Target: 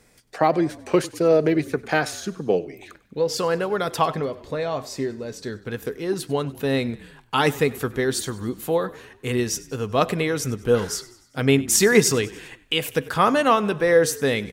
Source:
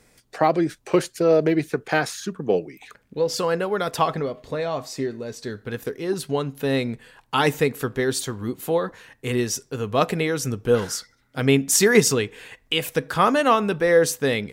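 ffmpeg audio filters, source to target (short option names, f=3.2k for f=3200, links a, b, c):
-filter_complex "[0:a]asplit=5[a][b][c][d][e];[b]adelay=97,afreqshift=-30,volume=-20dB[f];[c]adelay=194,afreqshift=-60,volume=-25dB[g];[d]adelay=291,afreqshift=-90,volume=-30.1dB[h];[e]adelay=388,afreqshift=-120,volume=-35.1dB[i];[a][f][g][h][i]amix=inputs=5:normalize=0"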